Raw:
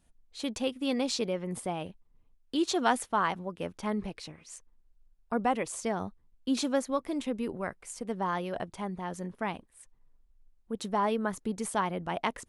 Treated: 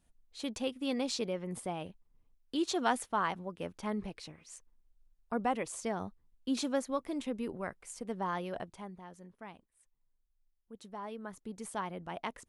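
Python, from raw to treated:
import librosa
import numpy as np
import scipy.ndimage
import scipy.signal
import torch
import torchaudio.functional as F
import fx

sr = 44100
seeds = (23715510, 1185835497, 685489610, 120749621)

y = fx.gain(x, sr, db=fx.line((8.53, -4.0), (9.16, -15.0), (11.01, -15.0), (11.74, -8.0)))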